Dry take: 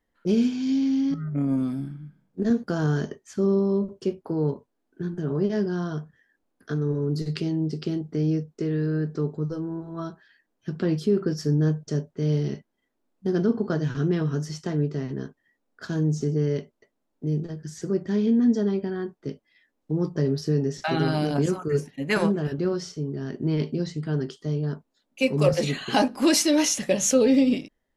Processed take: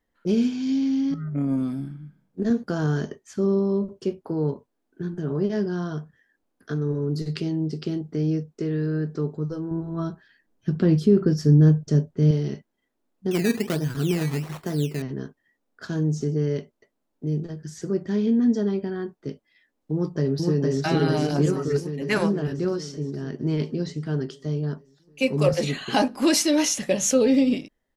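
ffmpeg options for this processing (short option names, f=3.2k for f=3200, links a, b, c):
-filter_complex "[0:a]asettb=1/sr,asplit=3[a][b][c];[a]atrim=end=9.714[d];[b]atrim=start=9.71:end=12.31,asetpts=PTS-STARTPTS,afade=t=in:d=0.004:c=qsin,afade=t=out:st=2.596:d=0.004:c=qsin,lowshelf=f=270:g=10[e];[c]atrim=start=12.306[f];[d][e]acrossfade=d=0.004:c1=hsin:c2=qsin[g];[g][f]acrossfade=d=0.004:c1=qsin:c2=hsin,asettb=1/sr,asplit=3[h][i][j];[h]atrim=end=13.314[k];[i]atrim=start=13.31:end=15.02,asetpts=PTS-STARTPTS,afade=t=in:d=0.004:c=qsin,afade=t=out:st=1.706:d=0.004:c=qsin,acrusher=samples=14:mix=1:aa=0.000001:lfo=1:lforange=14:lforate=1.3[l];[j]atrim=start=15.016[m];[k][l]acrossfade=d=0.004:c1=hsin:c2=qsin[n];[n][m]acrossfade=d=0.004:c1=qsin:c2=hsin,asplit=2[o][p];[p]afade=t=in:st=19.93:d=0.01,afade=t=out:st=20.84:d=0.01,aecho=0:1:460|920|1380|1840|2300|2760|3220|3680|4140|4600|5060:0.891251|0.579313|0.376554|0.24476|0.159094|0.103411|0.0672172|0.0436912|0.0283992|0.0184595|0.0119987[q];[o][q]amix=inputs=2:normalize=0"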